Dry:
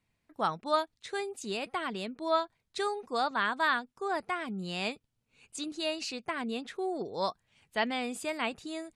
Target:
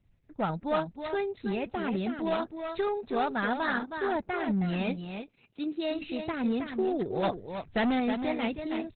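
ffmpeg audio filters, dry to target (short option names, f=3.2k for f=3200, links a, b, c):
-filter_complex "[0:a]asplit=3[a][b][c];[a]afade=t=out:st=4.9:d=0.02[d];[b]highpass=200,afade=t=in:st=4.9:d=0.02,afade=t=out:st=5.92:d=0.02[e];[c]afade=t=in:st=5.92:d=0.02[f];[d][e][f]amix=inputs=3:normalize=0,aemphasis=mode=reproduction:type=riaa,asettb=1/sr,asplit=3[g][h][i];[g]atrim=end=1.474[j];[h]atrim=start=1.47:end=1.96,asetpts=PTS-STARTPTS,afade=t=in:d=0.004:c=qsin,afade=t=out:st=0.486:d=0.004:c=qsin,acrossover=split=3200[k][l];[l]acompressor=threshold=-59dB:ratio=4:attack=1:release=60[m];[k][m]amix=inputs=2:normalize=0[n];[i]atrim=start=1.956[o];[j][n]acrossfade=d=0.004:c1=hsin:c2=qsin[p];[p][o]acrossfade=d=0.004:c1=qsin:c2=hsin,highshelf=f=8.1k:g=-9,bandreject=f=1.1k:w=6.6,asettb=1/sr,asplit=3[q][r][s];[q]atrim=end=7.234[t];[r]atrim=start=7.23:end=8,asetpts=PTS-STARTPTS,afade=t=in:d=0.004:c=qsin,afade=t=out:st=0.766:d=0.004:c=qsin,acontrast=68[u];[s]atrim=start=7.996[v];[t][u]acrossfade=d=0.004:c1=hsin:c2=qsin[w];[w][v]acrossfade=d=0.004:c1=qsin:c2=hsin,crystalizer=i=2:c=0,asoftclip=type=hard:threshold=-25dB,aecho=1:1:318:0.422,volume=1.5dB" -ar 48000 -c:a libopus -b:a 8k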